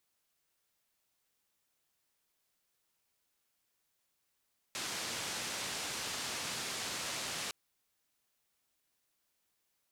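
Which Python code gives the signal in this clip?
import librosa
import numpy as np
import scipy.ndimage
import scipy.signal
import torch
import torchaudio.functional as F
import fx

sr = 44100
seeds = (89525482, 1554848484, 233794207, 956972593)

y = fx.band_noise(sr, seeds[0], length_s=2.76, low_hz=85.0, high_hz=7000.0, level_db=-39.5)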